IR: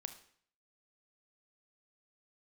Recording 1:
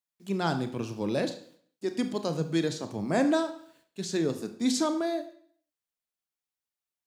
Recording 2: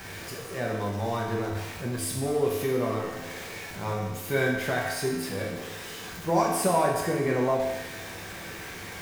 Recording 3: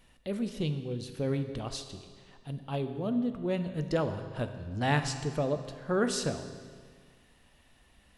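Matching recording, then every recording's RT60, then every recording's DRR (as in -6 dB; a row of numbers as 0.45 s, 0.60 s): 1; 0.55 s, 1.1 s, 1.8 s; 8.5 dB, -3.0 dB, 7.5 dB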